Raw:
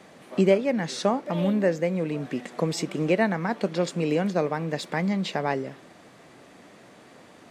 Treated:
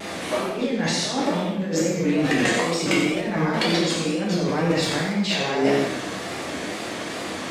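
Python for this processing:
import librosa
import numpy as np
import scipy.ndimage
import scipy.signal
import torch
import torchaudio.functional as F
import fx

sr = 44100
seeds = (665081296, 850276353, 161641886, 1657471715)

p1 = fx.high_shelf(x, sr, hz=3100.0, db=11.0)
p2 = fx.over_compress(p1, sr, threshold_db=-34.0, ratio=-1.0)
p3 = fx.high_shelf(p2, sr, hz=7600.0, db=-11.5)
p4 = p3 + fx.echo_single(p3, sr, ms=90, db=-8.0, dry=0)
p5 = fx.rev_gated(p4, sr, seeds[0], gate_ms=300, shape='falling', drr_db=-5.0)
p6 = fx.wow_flutter(p5, sr, seeds[1], rate_hz=2.1, depth_cents=81.0)
y = p6 * 10.0 ** (4.5 / 20.0)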